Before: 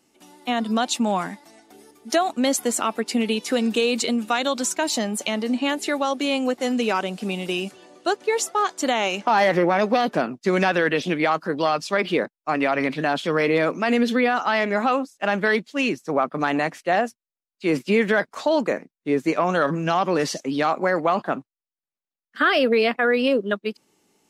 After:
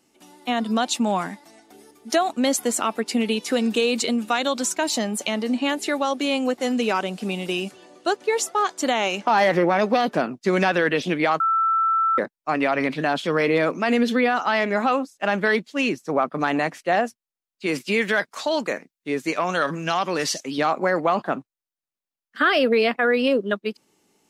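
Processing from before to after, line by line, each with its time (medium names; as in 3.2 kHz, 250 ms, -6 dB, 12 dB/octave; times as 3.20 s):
11.40–12.18 s: bleep 1.33 kHz -17 dBFS
17.66–20.58 s: tilt shelf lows -5 dB, about 1.4 kHz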